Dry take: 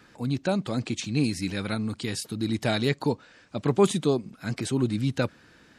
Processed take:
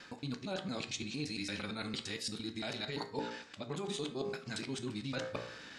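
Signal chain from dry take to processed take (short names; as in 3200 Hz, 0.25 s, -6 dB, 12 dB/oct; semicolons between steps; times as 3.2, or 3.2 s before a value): local time reversal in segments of 0.114 s; LPF 5300 Hz 12 dB/oct; high shelf 2800 Hz +9 dB; de-hum 58.07 Hz, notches 38; harmonic-percussive split harmonic +4 dB; low shelf 270 Hz -9 dB; limiter -18 dBFS, peak gain reduction 10.5 dB; reverse; compressor 12:1, threshold -38 dBFS, peak gain reduction 15.5 dB; reverse; resonator 75 Hz, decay 0.44 s, mix 50%; on a send: reverb, pre-delay 3 ms, DRR 11 dB; on the sum: gain +6.5 dB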